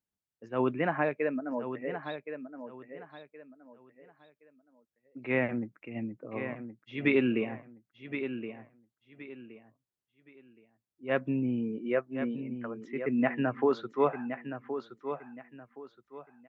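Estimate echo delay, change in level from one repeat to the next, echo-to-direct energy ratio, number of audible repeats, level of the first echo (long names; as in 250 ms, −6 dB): 1,070 ms, −11.0 dB, −9.0 dB, 3, −9.5 dB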